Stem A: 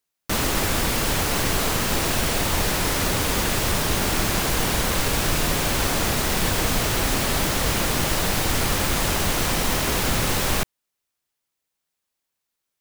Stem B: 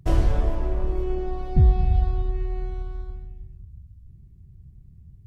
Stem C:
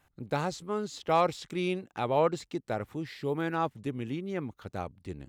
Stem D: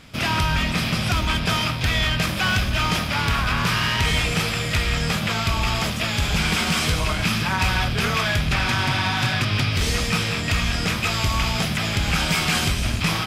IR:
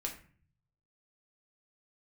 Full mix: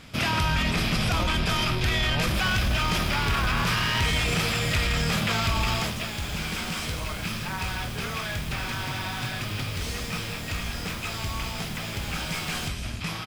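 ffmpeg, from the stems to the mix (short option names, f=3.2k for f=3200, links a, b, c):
-filter_complex "[0:a]adelay=2050,volume=-18dB[a];[1:a]acompressor=threshold=-25dB:ratio=6,adelay=700,volume=-2dB[b];[2:a]volume=-9.5dB[c];[3:a]volume=-0.5dB,afade=t=out:st=5.53:d=0.58:silence=0.334965[d];[a][b][c][d]amix=inputs=4:normalize=0,alimiter=limit=-16.5dB:level=0:latency=1:release=14"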